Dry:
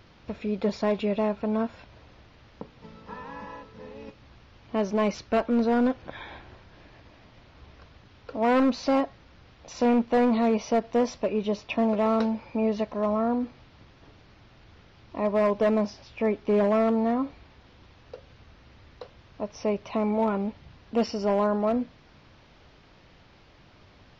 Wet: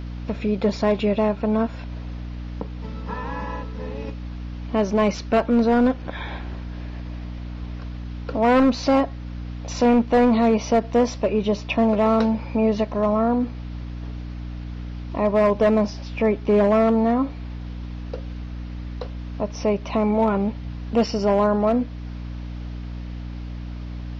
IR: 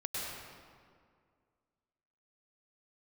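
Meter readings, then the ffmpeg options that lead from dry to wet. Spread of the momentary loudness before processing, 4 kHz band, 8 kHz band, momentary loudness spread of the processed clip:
18 LU, +6.0 dB, no reading, 16 LU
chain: -filter_complex "[0:a]aeval=exprs='val(0)+0.0112*(sin(2*PI*60*n/s)+sin(2*PI*2*60*n/s)/2+sin(2*PI*3*60*n/s)/3+sin(2*PI*4*60*n/s)/4+sin(2*PI*5*60*n/s)/5)':c=same,asplit=2[s0][s1];[s1]alimiter=level_in=1.12:limit=0.0631:level=0:latency=1:release=337,volume=0.891,volume=1.12[s2];[s0][s2]amix=inputs=2:normalize=0,volume=1.26"

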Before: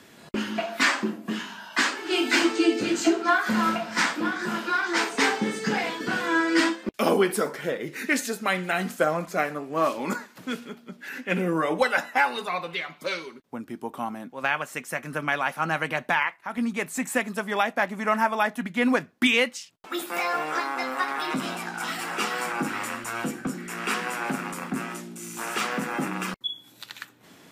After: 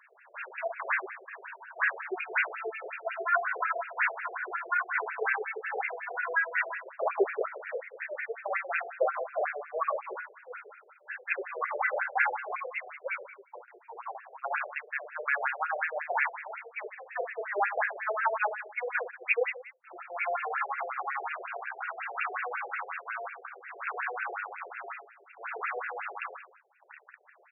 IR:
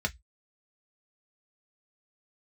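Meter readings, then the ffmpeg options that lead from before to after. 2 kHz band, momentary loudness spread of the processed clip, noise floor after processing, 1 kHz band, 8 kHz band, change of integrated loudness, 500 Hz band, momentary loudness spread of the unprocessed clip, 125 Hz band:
-4.5 dB, 15 LU, -60 dBFS, -5.0 dB, under -40 dB, -6.5 dB, -6.5 dB, 11 LU, under -40 dB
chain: -af "crystalizer=i=1.5:c=0,aecho=1:1:30|69|119.7|185.6|271.3:0.631|0.398|0.251|0.158|0.1,afftfilt=real='re*between(b*sr/1024,510*pow(2000/510,0.5+0.5*sin(2*PI*5.5*pts/sr))/1.41,510*pow(2000/510,0.5+0.5*sin(2*PI*5.5*pts/sr))*1.41)':imag='im*between(b*sr/1024,510*pow(2000/510,0.5+0.5*sin(2*PI*5.5*pts/sr))/1.41,510*pow(2000/510,0.5+0.5*sin(2*PI*5.5*pts/sr))*1.41)':win_size=1024:overlap=0.75,volume=0.708"

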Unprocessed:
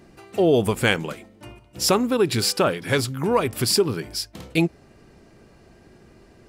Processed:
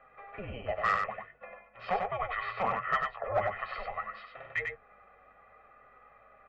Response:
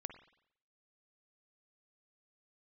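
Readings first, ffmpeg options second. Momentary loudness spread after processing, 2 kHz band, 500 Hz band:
17 LU, -6.5 dB, -15.0 dB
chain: -filter_complex "[0:a]bandreject=f=60:t=h:w=6,bandreject=f=120:t=h:w=6,bandreject=f=180:t=h:w=6,bandreject=f=240:t=h:w=6,bandreject=f=300:t=h:w=6,bandreject=f=360:t=h:w=6,bandreject=f=420:t=h:w=6,bandreject=f=480:t=h:w=6,highpass=f=580:t=q:w=0.5412,highpass=f=580:t=q:w=1.307,lowpass=f=3100:t=q:w=0.5176,lowpass=f=3100:t=q:w=0.7071,lowpass=f=3100:t=q:w=1.932,afreqshift=-380,aecho=1:1:1.6:0.81,asplit=2[s0][s1];[s1]acompressor=threshold=0.0158:ratio=6,volume=1[s2];[s0][s2]amix=inputs=2:normalize=0,flanger=delay=7.5:depth=3.5:regen=44:speed=0.68:shape=triangular,aresample=16000,asoftclip=type=hard:threshold=0.112,aresample=44100,aeval=exprs='val(0)+0.000891*(sin(2*PI*50*n/s)+sin(2*PI*2*50*n/s)/2+sin(2*PI*3*50*n/s)/3+sin(2*PI*4*50*n/s)/4+sin(2*PI*5*50*n/s)/5)':c=same,acrossover=split=490 2100:gain=0.158 1 0.158[s3][s4][s5];[s3][s4][s5]amix=inputs=3:normalize=0,aecho=1:1:96:0.596"

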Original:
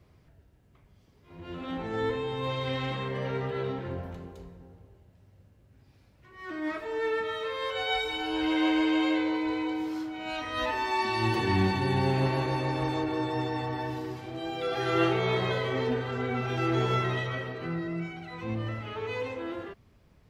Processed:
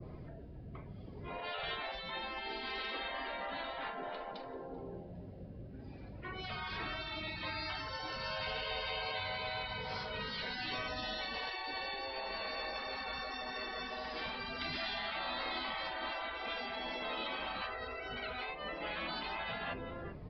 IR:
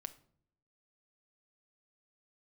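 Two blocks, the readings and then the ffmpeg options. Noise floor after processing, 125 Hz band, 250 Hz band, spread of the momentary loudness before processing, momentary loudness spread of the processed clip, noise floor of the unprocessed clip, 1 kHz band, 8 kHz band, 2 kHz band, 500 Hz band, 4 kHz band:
-49 dBFS, -18.0 dB, -18.5 dB, 12 LU, 10 LU, -61 dBFS, -8.0 dB, -14.0 dB, -5.0 dB, -12.5 dB, -2.5 dB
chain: -filter_complex "[0:a]aecho=1:1:388:0.133,acrossover=split=170|3000[s0][s1][s2];[s1]acompressor=threshold=0.00158:ratio=1.5[s3];[s0][s3][s2]amix=inputs=3:normalize=0,adynamicequalizer=threshold=0.002:dfrequency=3200:dqfactor=1:tfrequency=3200:tqfactor=1:attack=5:release=100:ratio=0.375:range=2:mode=cutabove:tftype=bell,acompressor=threshold=0.0112:ratio=16,asplit=2[s4][s5];[s5]adelay=46,volume=0.2[s6];[s4][s6]amix=inputs=2:normalize=0,afftfilt=real='re*lt(hypot(re,im),0.0112)':imag='im*lt(hypot(re,im),0.0112)':win_size=1024:overlap=0.75,afftdn=nr=13:nf=-66,equalizer=f=680:t=o:w=0.4:g=2.5,aresample=11025,aresample=44100,volume=5.31"

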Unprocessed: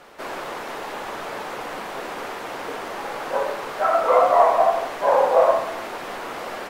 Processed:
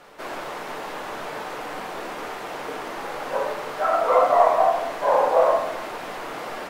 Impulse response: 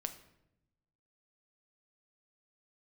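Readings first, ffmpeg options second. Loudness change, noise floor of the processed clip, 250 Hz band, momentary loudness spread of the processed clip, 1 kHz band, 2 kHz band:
-1.5 dB, -34 dBFS, -0.5 dB, 15 LU, -1.0 dB, -1.5 dB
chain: -filter_complex "[1:a]atrim=start_sample=2205[s0];[0:a][s0]afir=irnorm=-1:irlink=0"

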